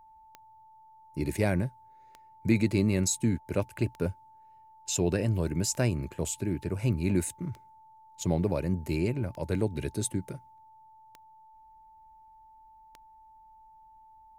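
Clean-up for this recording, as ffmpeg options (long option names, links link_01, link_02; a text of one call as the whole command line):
ffmpeg -i in.wav -af "adeclick=threshold=4,bandreject=frequency=880:width=30" out.wav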